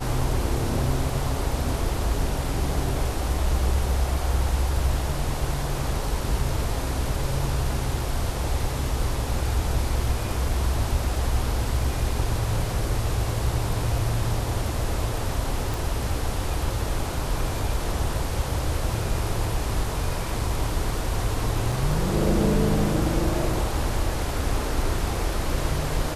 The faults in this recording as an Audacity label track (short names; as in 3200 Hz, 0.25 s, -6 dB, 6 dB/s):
15.740000	15.740000	pop
21.720000	21.720000	gap 3.3 ms